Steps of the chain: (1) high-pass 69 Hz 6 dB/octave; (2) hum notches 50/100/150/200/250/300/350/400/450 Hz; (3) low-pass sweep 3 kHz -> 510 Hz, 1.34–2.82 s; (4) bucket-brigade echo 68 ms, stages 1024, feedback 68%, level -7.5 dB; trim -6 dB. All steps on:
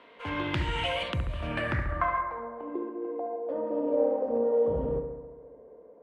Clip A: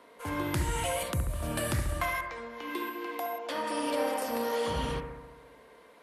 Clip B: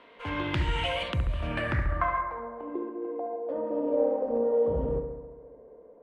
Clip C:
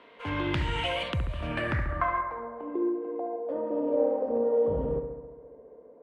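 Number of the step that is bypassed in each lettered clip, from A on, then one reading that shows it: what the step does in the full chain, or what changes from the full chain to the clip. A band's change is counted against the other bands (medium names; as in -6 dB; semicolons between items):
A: 3, 500 Hz band -5.0 dB; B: 1, 125 Hz band +2.0 dB; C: 2, 250 Hz band +2.0 dB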